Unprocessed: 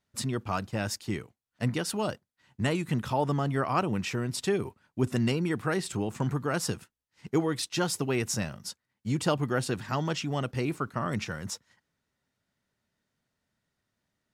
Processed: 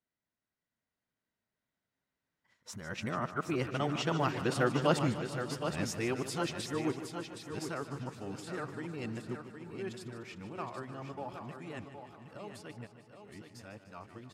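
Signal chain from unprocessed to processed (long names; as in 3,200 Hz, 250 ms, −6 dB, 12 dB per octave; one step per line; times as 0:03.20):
played backwards from end to start
source passing by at 0:04.45, 14 m/s, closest 18 metres
bass and treble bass −4 dB, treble −6 dB
on a send: repeating echo 768 ms, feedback 24%, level −8 dB
on the sum: feedback echo with a swinging delay time 150 ms, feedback 70%, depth 55 cents, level −12.5 dB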